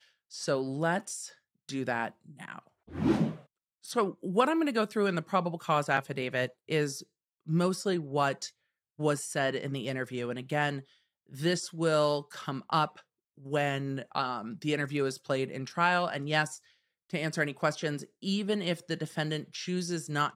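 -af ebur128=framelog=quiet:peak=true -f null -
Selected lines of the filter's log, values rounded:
Integrated loudness:
  I:         -31.2 LUFS
  Threshold: -41.8 LUFS
Loudness range:
  LRA:         3.3 LU
  Threshold: -51.7 LUFS
  LRA low:   -33.3 LUFS
  LRA high:  -30.0 LUFS
True peak:
  Peak:      -10.7 dBFS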